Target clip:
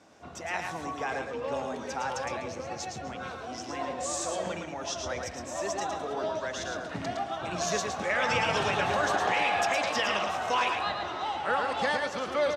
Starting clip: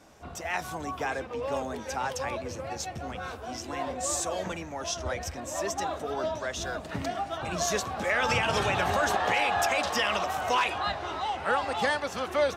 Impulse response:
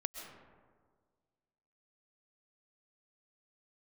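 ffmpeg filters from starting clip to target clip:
-filter_complex "[0:a]highpass=110,lowpass=7600,aecho=1:1:112:0.562,asplit=2[link_01][link_02];[1:a]atrim=start_sample=2205,adelay=136[link_03];[link_02][link_03]afir=irnorm=-1:irlink=0,volume=-13.5dB[link_04];[link_01][link_04]amix=inputs=2:normalize=0,volume=-2dB"

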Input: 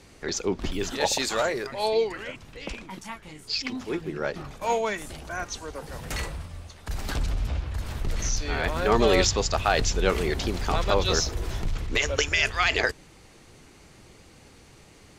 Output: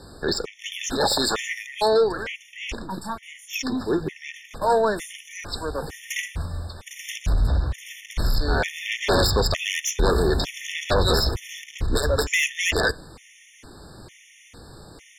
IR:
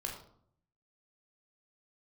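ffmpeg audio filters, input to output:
-filter_complex "[0:a]aeval=exprs='0.376*sin(PI/2*3.16*val(0)/0.376)':channel_layout=same,asplit=2[link_01][link_02];[1:a]atrim=start_sample=2205[link_03];[link_02][link_03]afir=irnorm=-1:irlink=0,volume=-20dB[link_04];[link_01][link_04]amix=inputs=2:normalize=0,afftfilt=real='re*gt(sin(2*PI*1.1*pts/sr)*(1-2*mod(floor(b*sr/1024/1800),2)),0)':imag='im*gt(sin(2*PI*1.1*pts/sr)*(1-2*mod(floor(b*sr/1024/1800),2)),0)':win_size=1024:overlap=0.75,volume=-6dB"

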